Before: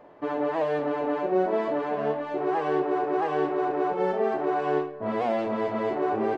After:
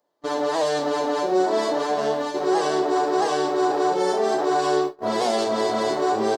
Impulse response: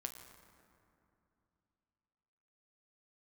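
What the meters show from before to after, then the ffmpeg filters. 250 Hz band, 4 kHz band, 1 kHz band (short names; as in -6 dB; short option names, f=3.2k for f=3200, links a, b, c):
+3.0 dB, n/a, +5.0 dB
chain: -filter_complex "[0:a]lowshelf=f=160:g=-11.5,asplit=2[a][b];[b]adelay=1166,volume=-8dB,highshelf=f=4k:g=-26.2[c];[a][c]amix=inputs=2:normalize=0,asplit=2[d][e];[e]alimiter=limit=-22.5dB:level=0:latency=1,volume=0dB[f];[d][f]amix=inputs=2:normalize=0,aexciter=amount=9.2:drive=7.4:freq=3.8k,agate=range=-29dB:threshold=-25dB:ratio=16:detection=peak,asplit=2[g][h];[h]aecho=0:1:35|46:0.178|0.158[i];[g][i]amix=inputs=2:normalize=0"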